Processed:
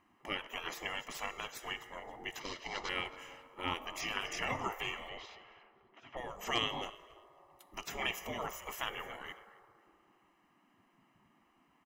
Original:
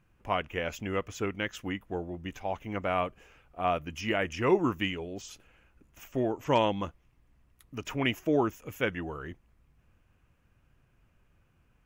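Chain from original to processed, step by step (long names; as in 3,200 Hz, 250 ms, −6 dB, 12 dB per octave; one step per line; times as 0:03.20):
0:02.40–0:02.89: variable-slope delta modulation 32 kbit/s
comb filter 1 ms, depth 76%
in parallel at −1.5 dB: downward compressor, threshold −35 dBFS, peak gain reduction 15.5 dB
0:05.09–0:06.17: on the sum: low-pass filter 3,200 Hz 24 dB per octave
repeating echo 271 ms, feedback 31%, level −22 dB
convolution reverb RT60 2.2 s, pre-delay 3 ms, DRR 14 dB
gate on every frequency bin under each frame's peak −15 dB weak
one half of a high-frequency compander decoder only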